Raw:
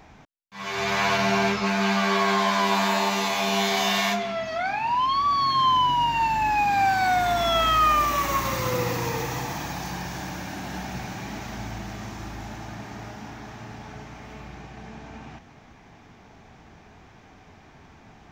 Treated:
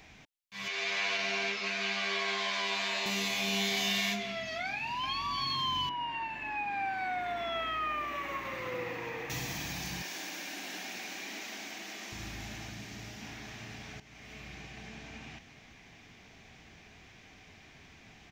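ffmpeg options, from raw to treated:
ffmpeg -i in.wav -filter_complex "[0:a]asettb=1/sr,asplit=3[link_01][link_02][link_03];[link_01]atrim=end=0.684[link_04];[link_02]atrim=start=0.68:end=3.06,asetpts=PTS-STARTPTS,afade=type=in:duration=0.004:curve=qsin,afade=type=out:start_time=2.376:duration=0.004:curve=qsin,highpass=430,lowpass=6100[link_05];[link_03]atrim=start=3.056[link_06];[link_04][link_05]acrossfade=duration=0.004:curve1=hsin:curve2=qsin[link_07];[link_07][link_06]acrossfade=duration=0.004:curve1=qsin:curve2=hsin,asplit=2[link_08][link_09];[link_09]afade=type=in:start_time=4.69:duration=0.01,afade=type=out:start_time=5.21:duration=0.01,aecho=0:1:340|680|1020|1360|1700|2040:0.530884|0.265442|0.132721|0.0663606|0.0331803|0.0165901[link_10];[link_08][link_10]amix=inputs=2:normalize=0,asettb=1/sr,asplit=3[link_11][link_12][link_13];[link_11]atrim=end=5.894[link_14];[link_12]atrim=start=5.89:end=9.3,asetpts=PTS-STARTPTS,afade=type=in:duration=0.004:curve=qsin,afade=type=out:start_time=3.406:duration=0.004:curve=qsin,acrossover=split=290 2400:gain=0.2 1 0.0708[link_15][link_16][link_17];[link_15][link_16][link_17]amix=inputs=3:normalize=0[link_18];[link_13]atrim=start=9.296[link_19];[link_14][link_18]acrossfade=duration=0.004:curve1=hsin:curve2=qsin[link_20];[link_20][link_19]acrossfade=duration=0.004:curve1=qsin:curve2=hsin,asettb=1/sr,asplit=3[link_21][link_22][link_23];[link_21]atrim=end=10.024[link_24];[link_22]atrim=start=10.02:end=12.12,asetpts=PTS-STARTPTS,afade=type=in:duration=0.004:curve=qsin,afade=type=out:start_time=2.096:duration=0.004:curve=qsin,highpass=frequency=270:width=0.5412,highpass=frequency=270:width=1.3066[link_25];[link_23]atrim=start=12.116[link_26];[link_24][link_25]acrossfade=duration=0.004:curve1=hsin:curve2=qsin[link_27];[link_27][link_26]acrossfade=duration=0.004:curve1=qsin:curve2=hsin,asettb=1/sr,asplit=3[link_28][link_29][link_30];[link_28]atrim=end=12.694[link_31];[link_29]atrim=start=12.69:end=13.22,asetpts=PTS-STARTPTS,afade=type=in:duration=0.004:curve=qsin,afade=type=out:start_time=0.526:duration=0.004:curve=qsin,acrossover=split=430|3000[link_32][link_33][link_34];[link_33]acompressor=threshold=-43dB:ratio=6:attack=3.2:release=140:knee=2.83:detection=peak[link_35];[link_32][link_35][link_34]amix=inputs=3:normalize=0[link_36];[link_30]atrim=start=13.216[link_37];[link_31][link_36]acrossfade=duration=0.004:curve1=hsin:curve2=qsin[link_38];[link_38][link_37]acrossfade=duration=0.004:curve1=qsin:curve2=hsin,asplit=2[link_39][link_40];[link_39]atrim=end=14,asetpts=PTS-STARTPTS,afade=type=out:start_time=13.996:duration=0.004:curve=hsin:silence=0.199526[link_41];[link_40]atrim=start=14,asetpts=PTS-STARTPTS,afade=type=in:duration=0.66:curve=qsin:silence=0.199526[link_42];[link_41][link_42]concat=n=2:v=0:a=1,highshelf=frequency=1700:width_type=q:width=1.5:gain=8,bandreject=frequency=870:width=15,acrossover=split=430[link_43][link_44];[link_44]acompressor=threshold=-35dB:ratio=1.5[link_45];[link_43][link_45]amix=inputs=2:normalize=0,volume=-7dB" out.wav

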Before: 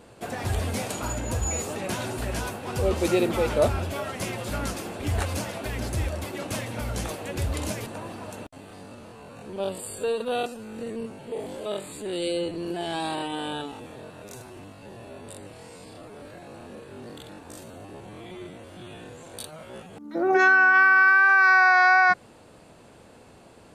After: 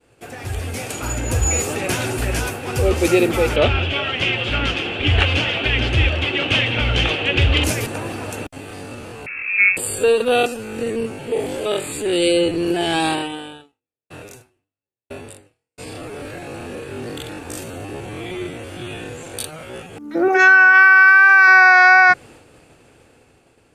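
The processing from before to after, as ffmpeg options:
ffmpeg -i in.wav -filter_complex "[0:a]asettb=1/sr,asplit=3[link_01][link_02][link_03];[link_01]atrim=end=3.564[link_04];[link_02]atrim=start=3.56:end=7.64,asetpts=PTS-STARTPTS,afade=type=in:duration=0.004:curve=qsin,afade=type=out:start_time=4.076:duration=0.004:curve=qsin,lowpass=frequency=3100:width_type=q:width=4.9[link_05];[link_03]atrim=start=7.636[link_06];[link_04][link_05]acrossfade=duration=0.004:curve1=hsin:curve2=qsin[link_07];[link_07][link_06]acrossfade=duration=0.004:curve1=qsin:curve2=hsin,asettb=1/sr,asplit=3[link_08][link_09][link_10];[link_08]atrim=end=9.264[link_11];[link_09]atrim=start=9.26:end=9.77,asetpts=PTS-STARTPTS,afade=type=in:duration=0.004:curve=qsin,afade=type=out:start_time=0.506:duration=0.004:curve=qsin,lowpass=frequency=2400:width_type=q:width=0.5098,lowpass=frequency=2400:width_type=q:width=0.6013,lowpass=frequency=2400:width_type=q:width=0.9,lowpass=frequency=2400:width_type=q:width=2.563,afreqshift=-2800[link_12];[link_10]atrim=start=9.766[link_13];[link_11][link_12]acrossfade=duration=0.004:curve1=hsin:curve2=qsin[link_14];[link_14][link_13]acrossfade=duration=0.004:curve1=qsin:curve2=hsin,asettb=1/sr,asplit=3[link_15][link_16][link_17];[link_15]atrim=end=13.104[link_18];[link_16]atrim=start=13.1:end=15.78,asetpts=PTS-STARTPTS,afade=type=in:duration=0.004:curve=qsin,afade=type=out:start_time=2.676:duration=0.004:curve=qsin,aeval=exprs='val(0)*pow(10,-38*if(lt(mod(1*n/s,1),2*abs(1)/1000),1-mod(1*n/s,1)/(2*abs(1)/1000),(mod(1*n/s,1)-2*abs(1)/1000)/(1-2*abs(1)/1000))/20)':channel_layout=same[link_19];[link_17]atrim=start=15.776[link_20];[link_18][link_19]acrossfade=duration=0.004:curve1=hsin:curve2=qsin[link_21];[link_21][link_20]acrossfade=duration=0.004:curve1=qsin:curve2=hsin,asettb=1/sr,asplit=3[link_22][link_23][link_24];[link_22]atrim=end=20.284[link_25];[link_23]atrim=start=20.28:end=21.48,asetpts=PTS-STARTPTS,afade=type=in:duration=0.004:curve=qsin,afade=type=out:start_time=1.196:duration=0.004:curve=qsin,highpass=frequency=610:poles=1[link_26];[link_24]atrim=start=21.476[link_27];[link_25][link_26]acrossfade=duration=0.004:curve1=hsin:curve2=qsin[link_28];[link_28][link_27]acrossfade=duration=0.004:curve1=qsin:curve2=hsin,agate=range=-33dB:threshold=-46dB:ratio=3:detection=peak,dynaudnorm=framelen=260:gausssize=9:maxgain=13dB,equalizer=frequency=200:width_type=o:width=0.33:gain=-10,equalizer=frequency=630:width_type=o:width=0.33:gain=-6,equalizer=frequency=1000:width_type=o:width=0.33:gain=-7,equalizer=frequency=2500:width_type=o:width=0.33:gain=4,equalizer=frequency=4000:width_type=o:width=0.33:gain=-4" out.wav

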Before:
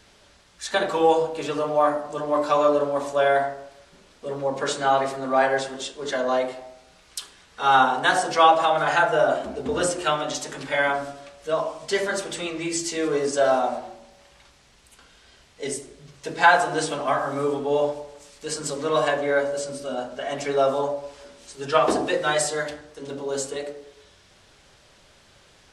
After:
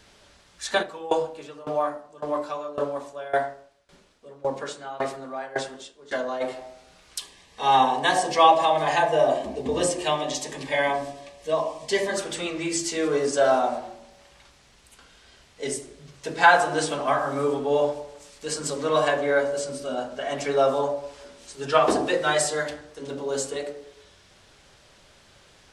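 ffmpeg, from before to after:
ffmpeg -i in.wav -filter_complex "[0:a]asplit=3[link_01][link_02][link_03];[link_01]afade=type=out:start_time=0.81:duration=0.02[link_04];[link_02]aeval=exprs='val(0)*pow(10,-20*if(lt(mod(1.8*n/s,1),2*abs(1.8)/1000),1-mod(1.8*n/s,1)/(2*abs(1.8)/1000),(mod(1.8*n/s,1)-2*abs(1.8)/1000)/(1-2*abs(1.8)/1000))/20)':channel_layout=same,afade=type=in:start_time=0.81:duration=0.02,afade=type=out:start_time=6.4:duration=0.02[link_05];[link_03]afade=type=in:start_time=6.4:duration=0.02[link_06];[link_04][link_05][link_06]amix=inputs=3:normalize=0,asettb=1/sr,asplit=3[link_07][link_08][link_09];[link_07]atrim=end=7.194[link_10];[link_08]atrim=start=7.19:end=12.17,asetpts=PTS-STARTPTS,afade=type=in:duration=0.004:curve=qsin,afade=type=out:start_time=4.976:duration=0.004:curve=qsin,asuperstop=centerf=1400:order=4:qfactor=3.4[link_11];[link_09]atrim=start=12.166[link_12];[link_10][link_11]acrossfade=duration=0.004:curve1=hsin:curve2=qsin[link_13];[link_13][link_12]acrossfade=duration=0.004:curve1=qsin:curve2=hsin" out.wav

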